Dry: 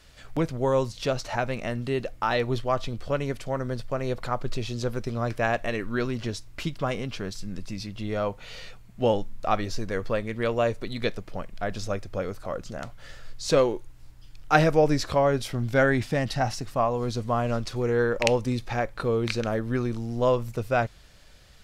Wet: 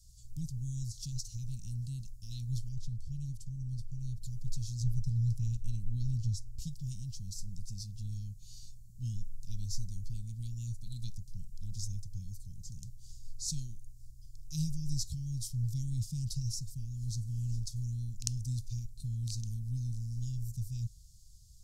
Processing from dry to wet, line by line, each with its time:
2.69–4.22 high shelf 3400 Hz -7.5 dB
4.8–6.62 tone controls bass +6 dB, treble -4 dB
whole clip: inverse Chebyshev band-stop 460–1700 Hz, stop band 70 dB; bell 7100 Hz +2.5 dB 0.68 oct; gain -2 dB

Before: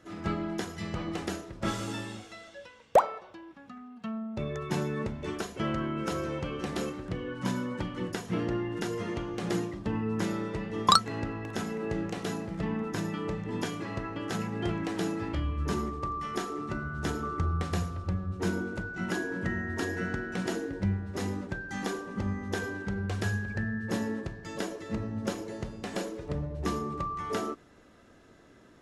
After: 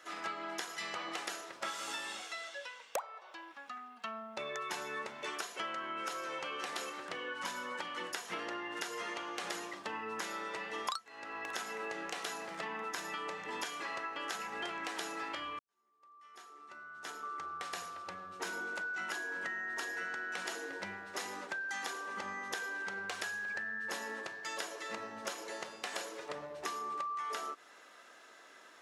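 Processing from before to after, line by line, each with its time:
15.59–18.64 fade in quadratic
whole clip: HPF 870 Hz 12 dB/oct; compressor 8:1, threshold -43 dBFS; gain +6.5 dB

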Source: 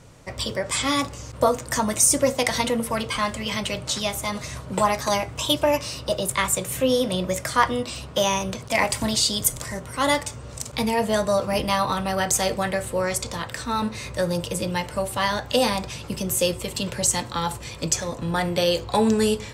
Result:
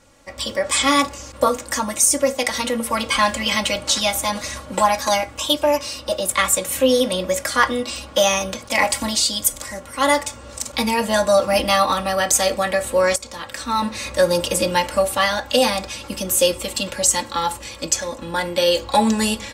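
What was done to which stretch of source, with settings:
13.16–14.39 fade in, from -14.5 dB
whole clip: low shelf 380 Hz -6.5 dB; comb 3.6 ms, depth 74%; AGC; gain -2.5 dB

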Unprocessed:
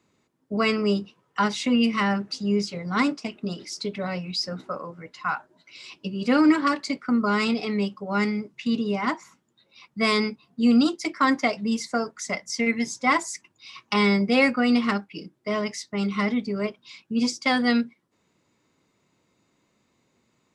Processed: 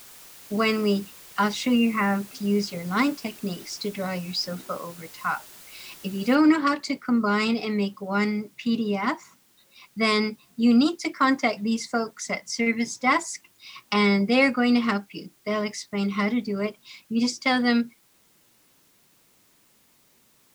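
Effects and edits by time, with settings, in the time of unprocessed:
1.77–2.35 spectral delete 2800–8600 Hz
6.35 noise floor step -47 dB -62 dB

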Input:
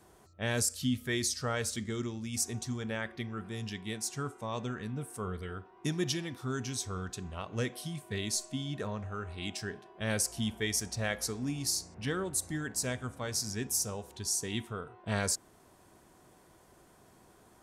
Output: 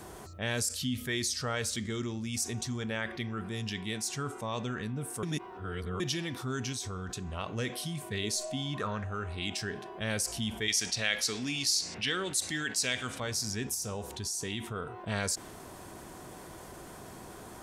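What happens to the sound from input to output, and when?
5.23–6 reverse
6.72–7.33 compressor, threshold -38 dBFS
8.23–9.03 bell 410 Hz -> 1700 Hz +15 dB 0.42 oct
10.68–13.2 weighting filter D
13.74–14.76 compressor, threshold -34 dBFS
whole clip: dynamic EQ 3100 Hz, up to +4 dB, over -48 dBFS, Q 0.76; fast leveller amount 50%; gain -7 dB

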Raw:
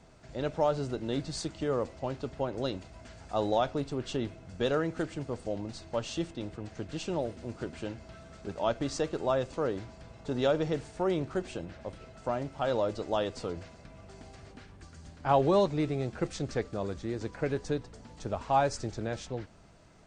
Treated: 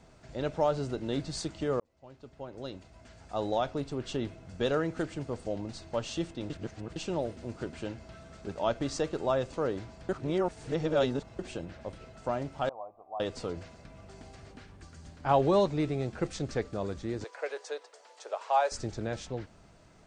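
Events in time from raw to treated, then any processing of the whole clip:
1.8–4.9 fade in equal-power
6.5–6.96 reverse
10.09–11.39 reverse
12.69–13.2 vocal tract filter a
17.24–18.72 steep high-pass 460 Hz

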